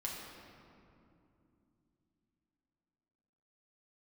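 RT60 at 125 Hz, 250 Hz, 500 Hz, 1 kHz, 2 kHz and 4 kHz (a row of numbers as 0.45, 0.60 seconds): 4.0, 4.3, 3.1, 2.5, 2.0, 1.4 seconds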